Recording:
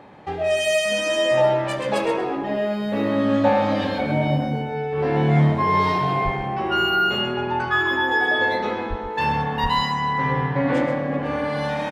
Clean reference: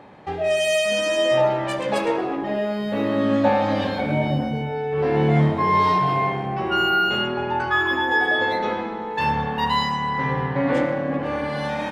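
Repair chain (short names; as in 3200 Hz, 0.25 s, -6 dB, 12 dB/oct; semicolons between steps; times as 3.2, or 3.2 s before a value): de-plosive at 6.24/8.89/9.62; inverse comb 0.129 s -10 dB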